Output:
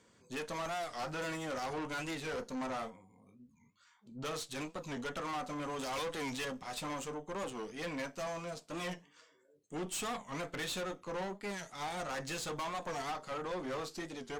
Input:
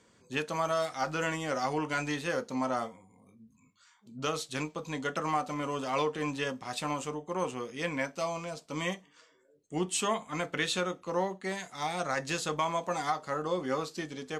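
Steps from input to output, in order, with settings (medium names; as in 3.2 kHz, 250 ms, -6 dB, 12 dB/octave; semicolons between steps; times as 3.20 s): 5.79–6.45 s: treble shelf 2.4 kHz +9.5 dB; valve stage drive 35 dB, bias 0.55; 2.90–4.25 s: treble shelf 5.4 kHz -8 dB; warped record 45 rpm, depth 160 cents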